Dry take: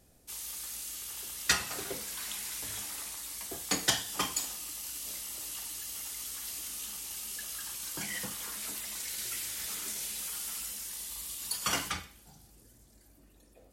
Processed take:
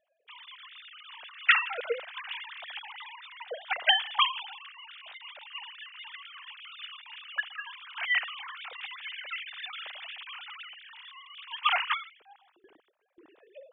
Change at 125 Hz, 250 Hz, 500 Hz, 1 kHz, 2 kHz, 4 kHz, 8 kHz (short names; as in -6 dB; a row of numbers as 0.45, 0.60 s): under -35 dB, under -20 dB, +5.5 dB, +8.5 dB, +9.5 dB, +5.0 dB, under -40 dB